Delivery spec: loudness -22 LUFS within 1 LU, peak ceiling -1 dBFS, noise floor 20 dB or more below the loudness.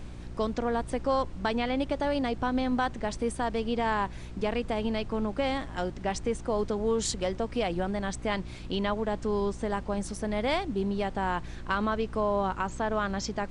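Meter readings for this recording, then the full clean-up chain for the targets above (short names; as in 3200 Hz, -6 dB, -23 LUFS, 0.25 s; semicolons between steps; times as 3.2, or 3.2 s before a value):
hum 60 Hz; harmonics up to 360 Hz; hum level -41 dBFS; noise floor -41 dBFS; noise floor target -51 dBFS; loudness -30.5 LUFS; peak -15.0 dBFS; loudness target -22.0 LUFS
-> de-hum 60 Hz, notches 6; noise print and reduce 10 dB; gain +8.5 dB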